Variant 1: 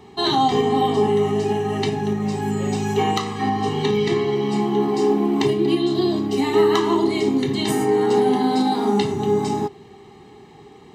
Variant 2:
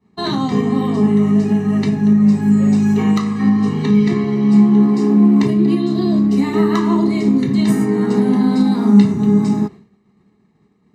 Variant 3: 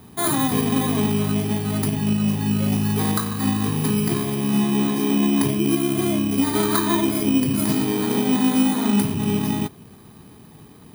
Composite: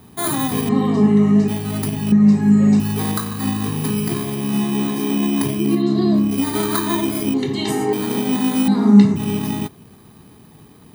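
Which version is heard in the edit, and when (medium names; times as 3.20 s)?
3
0.69–1.48 s: from 2
2.12–2.80 s: from 2
5.71–6.25 s: from 2, crossfade 0.24 s
7.34–7.93 s: from 1
8.68–9.16 s: from 2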